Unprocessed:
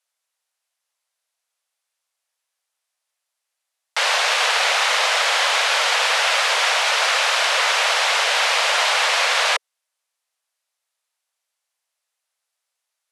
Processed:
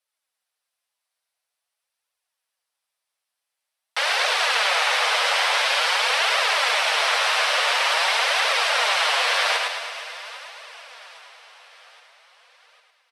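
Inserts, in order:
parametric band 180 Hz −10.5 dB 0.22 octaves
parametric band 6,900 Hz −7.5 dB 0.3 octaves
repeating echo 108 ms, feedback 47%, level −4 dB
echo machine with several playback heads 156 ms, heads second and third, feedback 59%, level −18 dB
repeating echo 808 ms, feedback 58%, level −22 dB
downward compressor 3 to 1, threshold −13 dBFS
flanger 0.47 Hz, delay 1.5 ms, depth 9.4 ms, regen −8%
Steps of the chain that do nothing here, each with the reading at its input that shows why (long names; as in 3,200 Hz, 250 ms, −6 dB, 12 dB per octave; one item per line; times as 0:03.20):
parametric band 180 Hz: nothing at its input below 360 Hz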